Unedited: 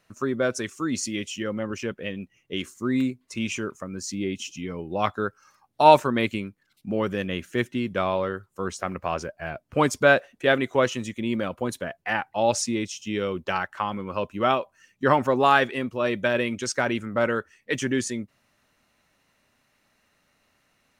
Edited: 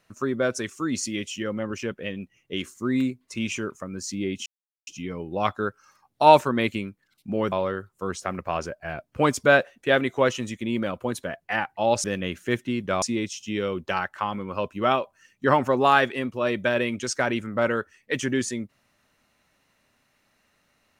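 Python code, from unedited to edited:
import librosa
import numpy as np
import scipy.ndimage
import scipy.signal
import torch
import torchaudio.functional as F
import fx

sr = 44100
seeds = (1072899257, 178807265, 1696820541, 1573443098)

y = fx.edit(x, sr, fx.insert_silence(at_s=4.46, length_s=0.41),
    fx.move(start_s=7.11, length_s=0.98, to_s=12.61), tone=tone)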